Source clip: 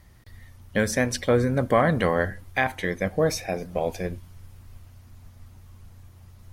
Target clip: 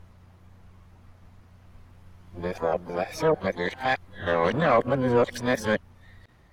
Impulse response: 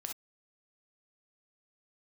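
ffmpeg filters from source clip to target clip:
-filter_complex "[0:a]areverse,asplit=2[link_01][link_02];[link_02]highpass=frequency=720:poles=1,volume=10dB,asoftclip=type=tanh:threshold=-8.5dB[link_03];[link_01][link_03]amix=inputs=2:normalize=0,lowpass=frequency=1000:poles=1,volume=-6dB,asplit=2[link_04][link_05];[link_05]asetrate=88200,aresample=44100,atempo=0.5,volume=-11dB[link_06];[link_04][link_06]amix=inputs=2:normalize=0"

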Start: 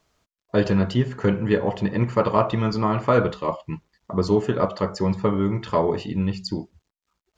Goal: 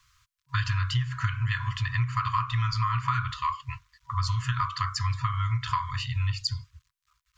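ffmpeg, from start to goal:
ffmpeg -i in.wav -af "afftfilt=real='re*(1-between(b*sr/4096,130,970))':imag='im*(1-between(b*sr/4096,130,970))':win_size=4096:overlap=0.75,acompressor=threshold=-29dB:ratio=6,volume=5.5dB" out.wav

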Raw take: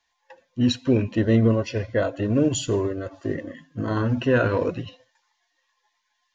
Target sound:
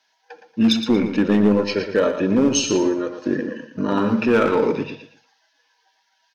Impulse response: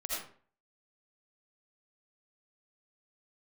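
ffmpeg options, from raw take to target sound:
-filter_complex "[0:a]highpass=frequency=180:width=0.5412,highpass=frequency=180:width=1.3066,equalizer=frequency=5300:width_type=o:width=0.55:gain=4,asplit=2[link_01][link_02];[link_02]alimiter=limit=-16dB:level=0:latency=1:release=93,volume=-1dB[link_03];[link_01][link_03]amix=inputs=2:normalize=0,asetrate=40440,aresample=44100,atempo=1.09051,volume=11dB,asoftclip=hard,volume=-11dB,aecho=1:1:116|232|348:0.355|0.0958|0.0259,asplit=2[link_04][link_05];[1:a]atrim=start_sample=2205,asetrate=74970,aresample=44100[link_06];[link_05][link_06]afir=irnorm=-1:irlink=0,volume=-13.5dB[link_07];[link_04][link_07]amix=inputs=2:normalize=0"

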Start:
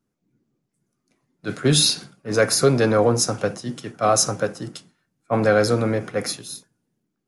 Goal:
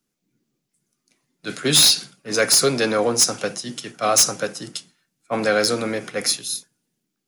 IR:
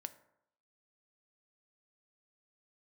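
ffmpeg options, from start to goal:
-filter_complex "[0:a]equalizer=frequency=95:width_type=o:width=0.35:gain=-14,acrossover=split=140|2200[link_01][link_02][link_03];[link_01]acompressor=threshold=-41dB:ratio=6[link_04];[link_03]aeval=exprs='0.473*sin(PI/2*2.24*val(0)/0.473)':channel_layout=same[link_05];[link_04][link_02][link_05]amix=inputs=3:normalize=0,volume=-2.5dB"

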